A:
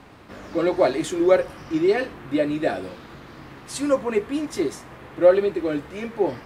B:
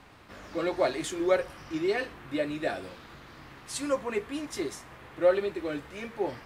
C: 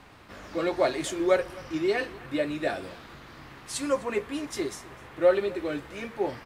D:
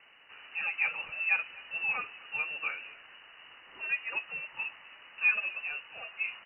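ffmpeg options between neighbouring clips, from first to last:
ffmpeg -i in.wav -af "equalizer=frequency=270:width=0.37:gain=-6.5,volume=-3dB" out.wav
ffmpeg -i in.wav -af "aecho=1:1:254:0.0794,volume=2dB" out.wav
ffmpeg -i in.wav -af "lowpass=frequency=2600:width_type=q:width=0.5098,lowpass=frequency=2600:width_type=q:width=0.6013,lowpass=frequency=2600:width_type=q:width=0.9,lowpass=frequency=2600:width_type=q:width=2.563,afreqshift=-3000,volume=-6.5dB" out.wav

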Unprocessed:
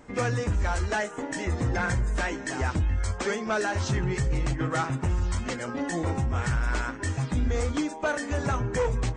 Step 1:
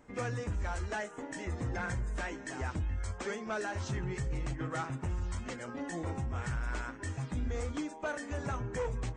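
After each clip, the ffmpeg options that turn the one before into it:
ffmpeg -i in.wav -af "equalizer=frequency=4600:width_type=o:width=0.77:gain=-2.5,volume=-9dB" out.wav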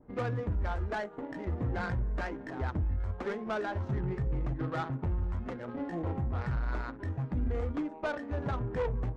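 ffmpeg -i in.wav -af "adynamicequalizer=threshold=0.00178:dfrequency=3200:dqfactor=1:tfrequency=3200:tqfactor=1:attack=5:release=100:ratio=0.375:range=2:mode=cutabove:tftype=bell,adynamicsmooth=sensitivity=4.5:basefreq=770,volume=3.5dB" out.wav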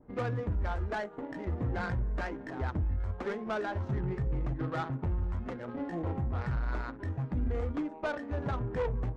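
ffmpeg -i in.wav -af anull out.wav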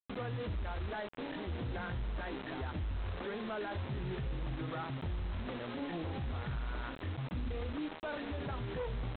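ffmpeg -i in.wav -af "aresample=8000,acrusher=bits=6:mix=0:aa=0.000001,aresample=44100,alimiter=level_in=7.5dB:limit=-24dB:level=0:latency=1:release=11,volume=-7.5dB,volume=-1dB" out.wav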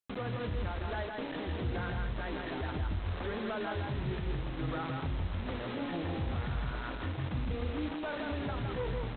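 ffmpeg -i in.wav -af "aecho=1:1:164:0.668,volume=2dB" out.wav

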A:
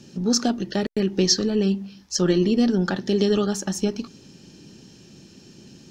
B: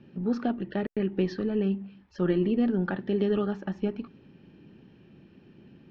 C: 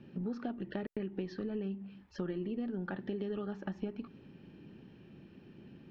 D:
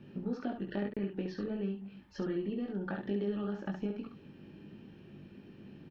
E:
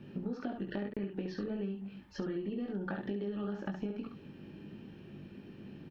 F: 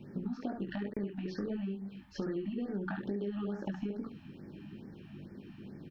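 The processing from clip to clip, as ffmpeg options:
ffmpeg -i in.wav -af "lowpass=frequency=2600:width=0.5412,lowpass=frequency=2600:width=1.3066,volume=-5.5dB" out.wav
ffmpeg -i in.wav -af "acompressor=threshold=-34dB:ratio=6,volume=-1dB" out.wav
ffmpeg -i in.wav -af "aecho=1:1:20|69:0.631|0.531" out.wav
ffmpeg -i in.wav -af "acompressor=threshold=-36dB:ratio=6,volume=2.5dB" out.wav
ffmpeg -i in.wav -af "afftfilt=real='re*(1-between(b*sr/1024,410*pow(3400/410,0.5+0.5*sin(2*PI*2.3*pts/sr))/1.41,410*pow(3400/410,0.5+0.5*sin(2*PI*2.3*pts/sr))*1.41))':imag='im*(1-between(b*sr/1024,410*pow(3400/410,0.5+0.5*sin(2*PI*2.3*pts/sr))/1.41,410*pow(3400/410,0.5+0.5*sin(2*PI*2.3*pts/sr))*1.41))':win_size=1024:overlap=0.75,volume=1dB" out.wav

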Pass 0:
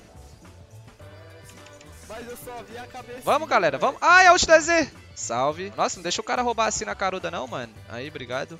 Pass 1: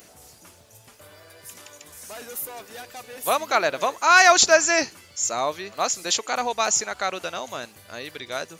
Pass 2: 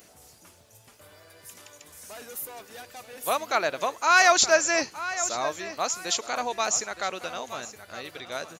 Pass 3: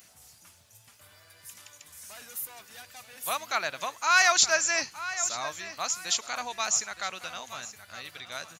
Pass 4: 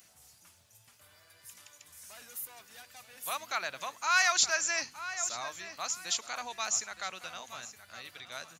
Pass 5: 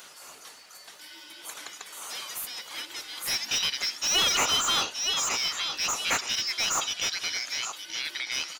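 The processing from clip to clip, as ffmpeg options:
ffmpeg -i in.wav -af "aemphasis=mode=production:type=bsi,volume=-1dB" out.wav
ffmpeg -i in.wav -filter_complex "[0:a]asplit=2[link_01][link_02];[link_02]adelay=918,lowpass=frequency=5000:poles=1,volume=-13dB,asplit=2[link_03][link_04];[link_04]adelay=918,lowpass=frequency=5000:poles=1,volume=0.29,asplit=2[link_05][link_06];[link_06]adelay=918,lowpass=frequency=5000:poles=1,volume=0.29[link_07];[link_01][link_03][link_05][link_07]amix=inputs=4:normalize=0,volume=-4dB" out.wav
ffmpeg -i in.wav -af "highpass=70,equalizer=frequency=400:width=0.7:gain=-13.5" out.wav
ffmpeg -i in.wav -filter_complex "[0:a]bandreject=frequency=50.6:width_type=h:width=4,bandreject=frequency=101.2:width_type=h:width=4,bandreject=frequency=151.8:width_type=h:width=4,bandreject=frequency=202.4:width_type=h:width=4,bandreject=frequency=253:width_type=h:width=4,acrossover=split=730|1700[link_01][link_02][link_03];[link_01]alimiter=level_in=12.5dB:limit=-24dB:level=0:latency=1,volume=-12.5dB[link_04];[link_04][link_02][link_03]amix=inputs=3:normalize=0,volume=-4.5dB" out.wav
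ffmpeg -i in.wav -filter_complex "[0:a]afftfilt=real='real(if(lt(b,272),68*(eq(floor(b/68),0)*3+eq(floor(b/68),1)*2+eq(floor(b/68),2)*1+eq(floor(b/68),3)*0)+mod(b,68),b),0)':imag='imag(if(lt(b,272),68*(eq(floor(b/68),0)*3+eq(floor(b/68),1)*2+eq(floor(b/68),2)*1+eq(floor(b/68),3)*0)+mod(b,68),b),0)':win_size=2048:overlap=0.75,asplit=2[link_01][link_02];[link_02]highpass=frequency=720:poles=1,volume=26dB,asoftclip=type=tanh:threshold=-12.5dB[link_03];[link_01][link_03]amix=inputs=2:normalize=0,lowpass=frequency=3100:poles=1,volume=-6dB,volume=-1.5dB" out.wav

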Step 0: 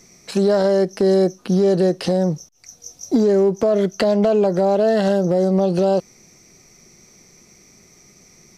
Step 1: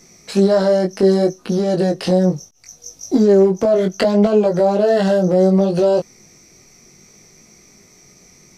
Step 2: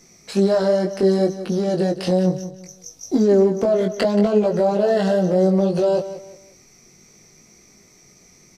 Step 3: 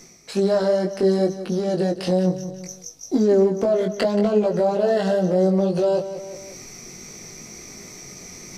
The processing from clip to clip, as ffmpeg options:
ffmpeg -i in.wav -af "flanger=delay=18.5:depth=3.4:speed=0.67,volume=5dB" out.wav
ffmpeg -i in.wav -af "aecho=1:1:178|356|534:0.224|0.0694|0.0215,volume=-3.5dB" out.wav
ffmpeg -i in.wav -af "bandreject=frequency=50:width_type=h:width=6,bandreject=frequency=100:width_type=h:width=6,bandreject=frequency=150:width_type=h:width=6,bandreject=frequency=200:width_type=h:width=6,areverse,acompressor=mode=upward:threshold=-25dB:ratio=2.5,areverse,volume=-1.5dB" out.wav

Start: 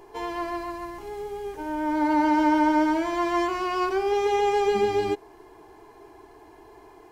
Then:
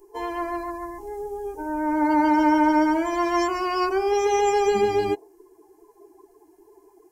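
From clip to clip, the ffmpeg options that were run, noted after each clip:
ffmpeg -i in.wav -af "afftdn=noise_reduction=20:noise_floor=-38,aexciter=amount=8:drive=4.5:freq=5400,volume=2dB" out.wav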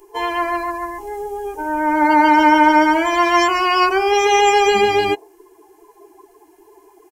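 ffmpeg -i in.wav -af "firequalizer=gain_entry='entry(240,0);entry(760,6);entry(2900,14);entry(4900,6)':delay=0.05:min_phase=1,volume=2.5dB" out.wav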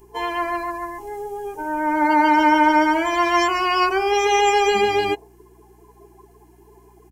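ffmpeg -i in.wav -af "aeval=exprs='val(0)+0.00355*(sin(2*PI*60*n/s)+sin(2*PI*2*60*n/s)/2+sin(2*PI*3*60*n/s)/3+sin(2*PI*4*60*n/s)/4+sin(2*PI*5*60*n/s)/5)':channel_layout=same,volume=-3.5dB" out.wav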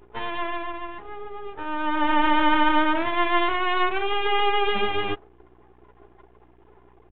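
ffmpeg -i in.wav -af "aeval=exprs='max(val(0),0)':channel_layout=same,aresample=8000,aresample=44100" out.wav

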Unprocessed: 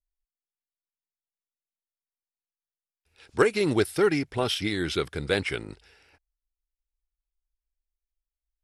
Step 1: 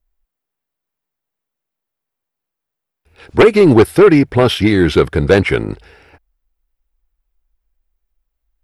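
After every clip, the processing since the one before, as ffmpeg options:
ffmpeg -i in.wav -af "equalizer=frequency=6900:width_type=o:width=2.8:gain=-14,aeval=exprs='0.316*sin(PI/2*2.24*val(0)/0.316)':channel_layout=same,volume=7.5dB" out.wav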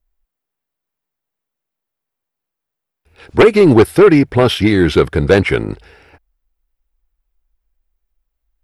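ffmpeg -i in.wav -af anull out.wav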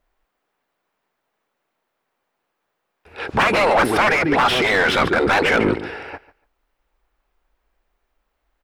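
ffmpeg -i in.wav -filter_complex "[0:a]aecho=1:1:144|288:0.112|0.0202,afftfilt=real='re*lt(hypot(re,im),0.631)':imag='im*lt(hypot(re,im),0.631)':win_size=1024:overlap=0.75,asplit=2[link_01][link_02];[link_02]highpass=frequency=720:poles=1,volume=25dB,asoftclip=type=tanh:threshold=-4dB[link_03];[link_01][link_03]amix=inputs=2:normalize=0,lowpass=frequency=1100:poles=1,volume=-6dB" out.wav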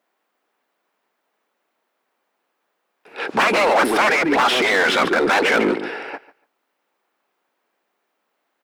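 ffmpeg -i in.wav -filter_complex "[0:a]highpass=frequency=200:width=0.5412,highpass=frequency=200:width=1.3066,asplit=2[link_01][link_02];[link_02]aeval=exprs='0.0841*(abs(mod(val(0)/0.0841+3,4)-2)-1)':channel_layout=same,volume=-9.5dB[link_03];[link_01][link_03]amix=inputs=2:normalize=0" out.wav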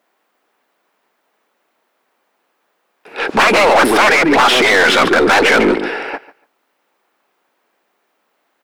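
ffmpeg -i in.wav -af "aeval=exprs='(tanh(3.98*val(0)+0.2)-tanh(0.2))/3.98':channel_layout=same,volume=8dB" out.wav

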